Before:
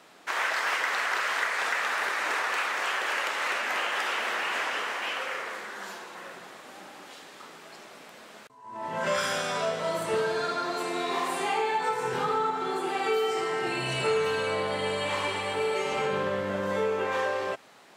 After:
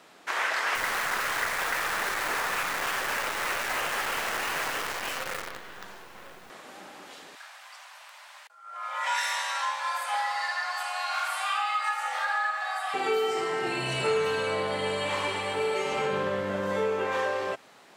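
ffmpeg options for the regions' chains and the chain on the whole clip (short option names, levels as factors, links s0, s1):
-filter_complex "[0:a]asettb=1/sr,asplit=3[s0][s1][s2];[s0]atrim=end=0.754[s3];[s1]atrim=start=0.75:end=6.5,asetpts=PTS-STARTPTS,afade=t=in:d=0.004:c=qsin,afade=t=out:st=5.746:d=0.004:c=qsin,lowpass=f=2900:p=1,acrusher=bits=6:dc=4:mix=0:aa=0.000001[s4];[s2]atrim=start=6.496[s5];[s3][s4]acrossfade=d=0.004:c1=hsin:c2=qsin[s6];[s6][s5]acrossfade=d=0.004:c1=qsin:c2=hsin,asettb=1/sr,asplit=3[s7][s8][s9];[s7]atrim=end=7.354[s10];[s8]atrim=start=7.35:end=12.94,asetpts=PTS-STARTPTS,afade=t=in:d=0.004:c=qsin,afade=t=out:st=5.586:d=0.004:c=qsin,afreqshift=380,highpass=770[s11];[s9]atrim=start=12.936[s12];[s10][s11]acrossfade=d=0.004:c1=hsin:c2=qsin[s13];[s13][s12]acrossfade=d=0.004:c1=qsin:c2=hsin"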